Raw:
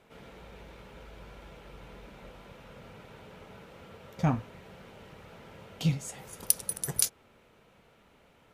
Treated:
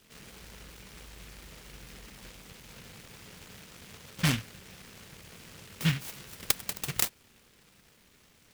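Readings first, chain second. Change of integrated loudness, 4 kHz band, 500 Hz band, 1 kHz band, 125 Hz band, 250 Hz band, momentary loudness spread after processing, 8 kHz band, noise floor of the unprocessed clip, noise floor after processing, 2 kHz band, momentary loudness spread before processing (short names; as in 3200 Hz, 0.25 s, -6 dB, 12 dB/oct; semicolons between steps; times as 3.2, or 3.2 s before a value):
-0.5 dB, +5.5 dB, -4.0 dB, -2.5 dB, -0.5 dB, -1.0 dB, 20 LU, -4.5 dB, -62 dBFS, -62 dBFS, +9.0 dB, 22 LU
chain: noise-modulated delay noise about 2200 Hz, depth 0.43 ms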